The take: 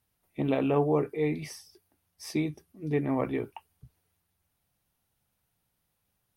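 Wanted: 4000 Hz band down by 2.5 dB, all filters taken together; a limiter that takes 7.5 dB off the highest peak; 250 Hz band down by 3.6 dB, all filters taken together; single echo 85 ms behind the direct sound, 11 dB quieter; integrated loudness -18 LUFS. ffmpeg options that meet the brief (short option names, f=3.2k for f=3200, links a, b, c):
-af "equalizer=f=250:t=o:g=-4.5,equalizer=f=4k:t=o:g=-3.5,alimiter=limit=-22dB:level=0:latency=1,aecho=1:1:85:0.282,volume=16dB"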